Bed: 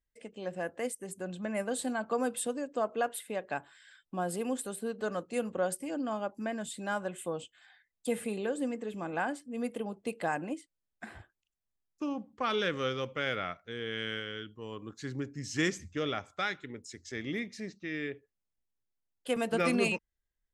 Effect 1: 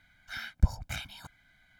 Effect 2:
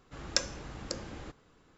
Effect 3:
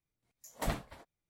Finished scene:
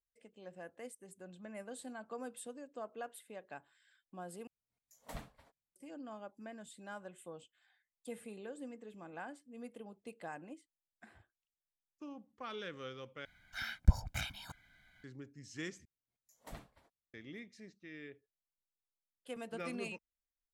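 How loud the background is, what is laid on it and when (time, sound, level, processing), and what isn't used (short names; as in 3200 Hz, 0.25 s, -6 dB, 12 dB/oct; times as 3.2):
bed -13.5 dB
4.47 replace with 3 -12 dB + notch 350 Hz, Q 5.3
13.25 replace with 1 -2 dB
15.85 replace with 3 -15.5 dB
not used: 2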